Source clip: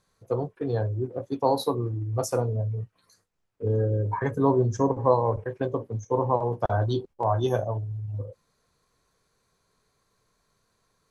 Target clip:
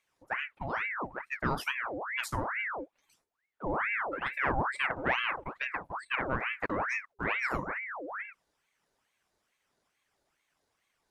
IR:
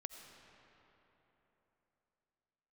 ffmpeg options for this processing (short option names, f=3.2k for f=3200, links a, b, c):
-af "asoftclip=type=tanh:threshold=-11.5dB,aeval=exprs='val(0)*sin(2*PI*1300*n/s+1300*0.7/2.3*sin(2*PI*2.3*n/s))':c=same,volume=-4.5dB"